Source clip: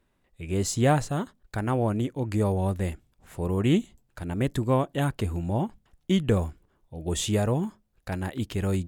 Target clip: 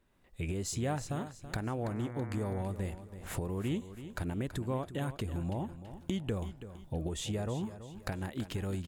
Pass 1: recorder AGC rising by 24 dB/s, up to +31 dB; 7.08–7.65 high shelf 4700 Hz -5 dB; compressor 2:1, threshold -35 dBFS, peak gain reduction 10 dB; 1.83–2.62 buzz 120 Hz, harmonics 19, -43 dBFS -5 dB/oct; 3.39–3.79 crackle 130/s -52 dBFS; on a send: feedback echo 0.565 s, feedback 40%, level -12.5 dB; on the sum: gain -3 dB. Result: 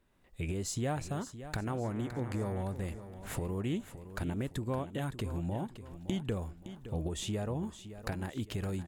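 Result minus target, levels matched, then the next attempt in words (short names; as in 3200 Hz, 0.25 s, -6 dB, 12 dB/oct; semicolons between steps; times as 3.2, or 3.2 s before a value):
echo 0.236 s late
recorder AGC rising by 24 dB/s, up to +31 dB; 7.08–7.65 high shelf 4700 Hz -5 dB; compressor 2:1, threshold -35 dBFS, peak gain reduction 10 dB; 1.83–2.62 buzz 120 Hz, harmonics 19, -43 dBFS -5 dB/oct; 3.39–3.79 crackle 130/s -52 dBFS; on a send: feedback echo 0.329 s, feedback 40%, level -12.5 dB; on the sum: gain -3 dB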